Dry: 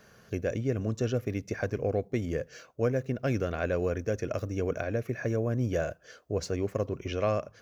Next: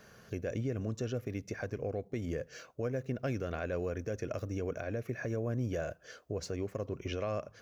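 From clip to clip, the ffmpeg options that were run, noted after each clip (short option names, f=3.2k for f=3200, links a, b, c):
-af "alimiter=level_in=1.5dB:limit=-24dB:level=0:latency=1:release=243,volume=-1.5dB"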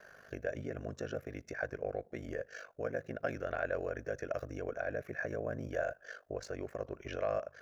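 -af "equalizer=f=160:t=o:w=0.67:g=-7,equalizer=f=630:t=o:w=0.67:g=10,equalizer=f=1.6k:t=o:w=0.67:g=12,aeval=exprs='val(0)*sin(2*PI*25*n/s)':c=same,volume=-3.5dB"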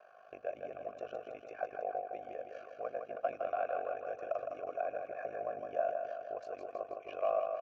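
-filter_complex "[0:a]asplit=3[a][b][c];[a]bandpass=f=730:t=q:w=8,volume=0dB[d];[b]bandpass=f=1.09k:t=q:w=8,volume=-6dB[e];[c]bandpass=f=2.44k:t=q:w=8,volume=-9dB[f];[d][e][f]amix=inputs=3:normalize=0,asplit=2[g][h];[h]aecho=0:1:161|322|483|644|805|966|1127|1288:0.531|0.319|0.191|0.115|0.0688|0.0413|0.0248|0.0149[i];[g][i]amix=inputs=2:normalize=0,volume=8.5dB"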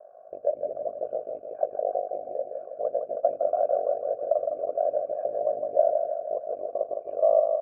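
-af "lowpass=f=590:t=q:w=4.9,volume=1.5dB"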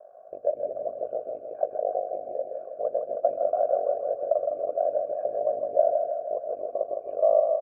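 -af "aecho=1:1:129:0.237"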